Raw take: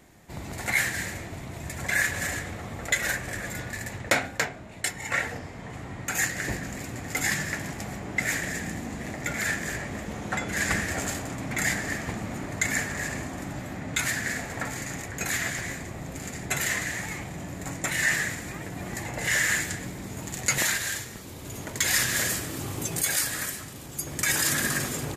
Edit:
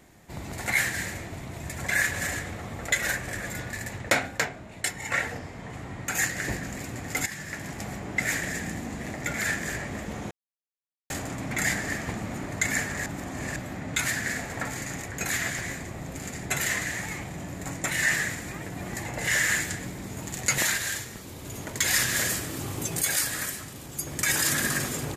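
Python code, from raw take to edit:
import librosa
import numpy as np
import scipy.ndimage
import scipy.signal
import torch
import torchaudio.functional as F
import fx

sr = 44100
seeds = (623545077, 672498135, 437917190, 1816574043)

y = fx.edit(x, sr, fx.fade_in_from(start_s=7.26, length_s=0.58, floor_db=-14.0),
    fx.silence(start_s=10.31, length_s=0.79),
    fx.reverse_span(start_s=13.06, length_s=0.5), tone=tone)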